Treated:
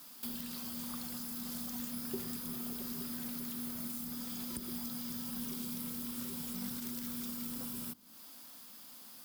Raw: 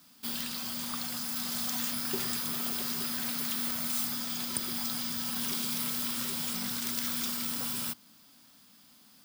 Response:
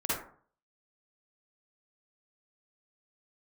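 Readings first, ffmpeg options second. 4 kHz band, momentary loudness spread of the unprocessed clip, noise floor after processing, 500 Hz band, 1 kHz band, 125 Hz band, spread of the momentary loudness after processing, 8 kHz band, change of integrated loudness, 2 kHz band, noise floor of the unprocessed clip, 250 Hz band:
-13.0 dB, 4 LU, -53 dBFS, -5.0 dB, -11.0 dB, -3.5 dB, 11 LU, -10.0 dB, -8.5 dB, -13.0 dB, -59 dBFS, -1.5 dB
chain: -filter_complex "[0:a]equalizer=f=125:t=o:w=1:g=-7,equalizer=f=500:t=o:w=1:g=4,equalizer=f=1k:t=o:w=1:g=3,equalizer=f=16k:t=o:w=1:g=10,acrossover=split=310[a][b];[b]acompressor=threshold=-43dB:ratio=8[c];[a][c]amix=inputs=2:normalize=0,volume=1.5dB"

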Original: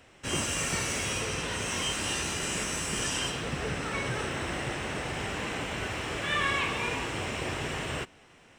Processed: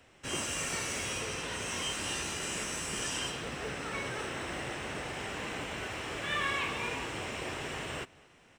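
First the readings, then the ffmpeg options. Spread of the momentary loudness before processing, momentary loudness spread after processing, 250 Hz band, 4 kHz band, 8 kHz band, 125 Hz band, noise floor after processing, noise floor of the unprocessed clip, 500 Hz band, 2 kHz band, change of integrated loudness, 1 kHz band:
5 LU, 5 LU, -5.5 dB, -4.0 dB, -4.0 dB, -7.5 dB, -61 dBFS, -57 dBFS, -4.0 dB, -4.0 dB, -4.0 dB, -4.0 dB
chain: -filter_complex "[0:a]acrossover=split=240[a][b];[a]alimiter=level_in=12dB:limit=-24dB:level=0:latency=1:release=318,volume=-12dB[c];[c][b]amix=inputs=2:normalize=0,acrusher=bits=9:mode=log:mix=0:aa=0.000001,asplit=2[d][e];[e]adelay=227.4,volume=-24dB,highshelf=f=4k:g=-5.12[f];[d][f]amix=inputs=2:normalize=0,volume=-4dB"

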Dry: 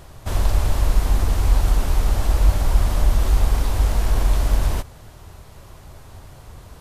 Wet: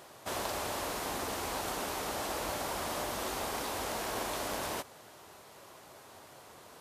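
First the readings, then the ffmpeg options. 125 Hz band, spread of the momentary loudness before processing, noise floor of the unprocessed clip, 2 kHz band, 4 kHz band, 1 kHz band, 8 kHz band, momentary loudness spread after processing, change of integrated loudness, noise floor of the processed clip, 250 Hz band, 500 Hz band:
-28.0 dB, 4 LU, -44 dBFS, -4.0 dB, -4.0 dB, -4.0 dB, -4.0 dB, 17 LU, -14.0 dB, -54 dBFS, -9.5 dB, -4.5 dB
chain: -af "highpass=320,volume=-4dB"

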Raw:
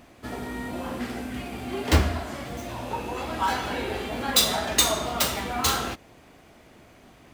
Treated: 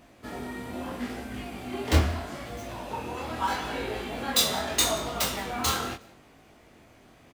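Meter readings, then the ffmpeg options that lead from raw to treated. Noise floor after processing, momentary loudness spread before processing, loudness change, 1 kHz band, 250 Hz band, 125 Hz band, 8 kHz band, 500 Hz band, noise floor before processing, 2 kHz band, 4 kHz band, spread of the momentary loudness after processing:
-56 dBFS, 13 LU, -3.0 dB, -3.0 dB, -3.0 dB, -1.5 dB, -3.0 dB, -2.5 dB, -53 dBFS, -3.0 dB, -3.0 dB, 13 LU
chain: -af "aecho=1:1:182|364:0.0708|0.0163,flanger=delay=18.5:depth=6.8:speed=0.78"

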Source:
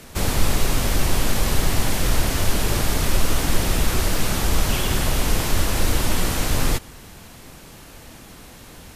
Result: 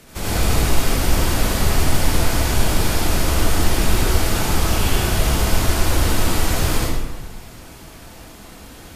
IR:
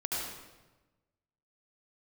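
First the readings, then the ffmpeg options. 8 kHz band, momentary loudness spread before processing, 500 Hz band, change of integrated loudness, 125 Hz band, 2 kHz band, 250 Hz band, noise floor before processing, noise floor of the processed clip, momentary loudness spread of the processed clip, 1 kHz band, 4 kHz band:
+1.5 dB, 20 LU, +3.5 dB, +2.5 dB, +3.5 dB, +2.5 dB, +3.0 dB, -43 dBFS, -40 dBFS, 20 LU, +3.5 dB, +2.0 dB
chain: -filter_complex "[1:a]atrim=start_sample=2205[a];[0:a][a]afir=irnorm=-1:irlink=0,volume=-2.5dB"

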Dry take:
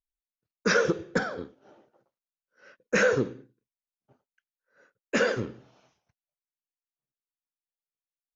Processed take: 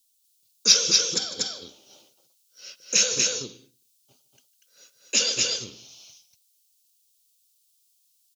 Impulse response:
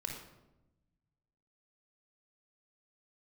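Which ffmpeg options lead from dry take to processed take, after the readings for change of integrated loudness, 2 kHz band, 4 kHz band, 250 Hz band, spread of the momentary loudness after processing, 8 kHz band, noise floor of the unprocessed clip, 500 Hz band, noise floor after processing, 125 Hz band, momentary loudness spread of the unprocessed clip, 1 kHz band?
+6.0 dB, -5.0 dB, +18.0 dB, -9.0 dB, 15 LU, n/a, under -85 dBFS, -9.0 dB, -67 dBFS, -9.0 dB, 14 LU, -9.5 dB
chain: -af "aecho=1:1:152|240:0.119|0.708,acompressor=threshold=-46dB:ratio=1.5,aexciter=amount=13.7:drive=8.7:freq=2.8k,volume=-2dB"

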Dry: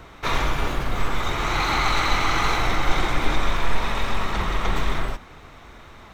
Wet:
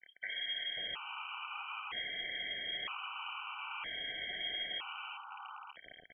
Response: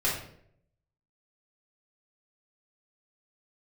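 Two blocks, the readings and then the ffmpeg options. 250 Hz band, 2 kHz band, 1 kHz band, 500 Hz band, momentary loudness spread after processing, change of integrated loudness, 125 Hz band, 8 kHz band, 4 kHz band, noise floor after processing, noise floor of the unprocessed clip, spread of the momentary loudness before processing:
-31.5 dB, -14.0 dB, -20.5 dB, -25.0 dB, 10 LU, -15.0 dB, -38.5 dB, under -40 dB, -7.5 dB, -60 dBFS, -45 dBFS, 6 LU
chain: -filter_complex "[0:a]acrossover=split=83|1600[a][b][c];[a]acompressor=threshold=-24dB:ratio=4[d];[b]acompressor=threshold=-36dB:ratio=4[e];[c]acompressor=threshold=-36dB:ratio=4[f];[d][e][f]amix=inputs=3:normalize=0,acrusher=bits=5:mix=0:aa=0.000001,highpass=f=55:p=1,acrossover=split=260|2200[g][h][i];[g]adelay=50[j];[i]adelay=540[k];[j][h][k]amix=inputs=3:normalize=0,adynamicequalizer=threshold=0.00398:dfrequency=2300:dqfactor=1.3:tfrequency=2300:tqfactor=1.3:attack=5:release=100:ratio=0.375:range=2:mode=boostabove:tftype=bell,acompressor=threshold=-38dB:ratio=2.5,lowpass=f=2.8k:t=q:w=0.5098,lowpass=f=2.8k:t=q:w=0.6013,lowpass=f=2.8k:t=q:w=0.9,lowpass=f=2.8k:t=q:w=2.563,afreqshift=-3300,asplit=2[l][m];[1:a]atrim=start_sample=2205[n];[m][n]afir=irnorm=-1:irlink=0,volume=-32.5dB[o];[l][o]amix=inputs=2:normalize=0,afftfilt=real='re*gt(sin(2*PI*0.52*pts/sr)*(1-2*mod(floor(b*sr/1024/770),2)),0)':imag='im*gt(sin(2*PI*0.52*pts/sr)*(1-2*mod(floor(b*sr/1024/770),2)),0)':win_size=1024:overlap=0.75"

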